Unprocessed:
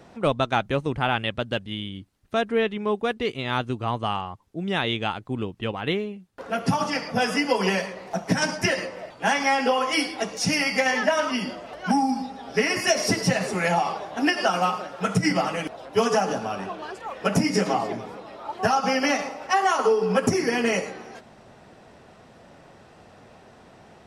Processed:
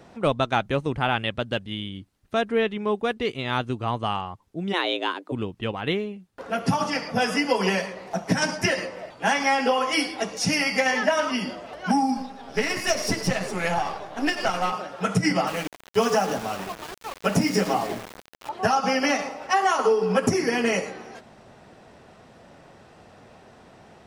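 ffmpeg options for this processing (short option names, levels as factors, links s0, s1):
-filter_complex "[0:a]asplit=3[s0][s1][s2];[s0]afade=t=out:st=4.72:d=0.02[s3];[s1]afreqshift=180,afade=t=in:st=4.72:d=0.02,afade=t=out:st=5.31:d=0.02[s4];[s2]afade=t=in:st=5.31:d=0.02[s5];[s3][s4][s5]amix=inputs=3:normalize=0,asettb=1/sr,asplit=3[s6][s7][s8];[s6]atrim=end=12.174[s9];[s7]atrim=start=12.17:end=14.72,asetpts=PTS-STARTPTS,afade=t=in:d=0.004:c=qsin,afade=t=out:st=2.546:d=0.004:c=qsin,aeval=exprs='if(lt(val(0),0),0.447*val(0),val(0))':c=same[s10];[s8]atrim=start=14.716[s11];[s9][s10]acrossfade=d=0.004:c1=hsin:c2=qsin[s12];[s12][s11]acrossfade=d=0.004:c1=qsin:c2=hsin,asettb=1/sr,asplit=3[s13][s14][s15];[s13]atrim=end=15.474[s16];[s14]atrim=start=15.47:end=18.49,asetpts=PTS-STARTPTS,afade=t=in:d=0.004:c=qsin,afade=t=out:st=3.016:d=0.004:c=qsin,aeval=exprs='val(0)*gte(abs(val(0)),0.0237)':c=same[s17];[s15]atrim=start=18.486[s18];[s16][s17]acrossfade=d=0.004:c1=hsin:c2=qsin[s19];[s19][s18]acrossfade=d=0.004:c1=qsin:c2=hsin"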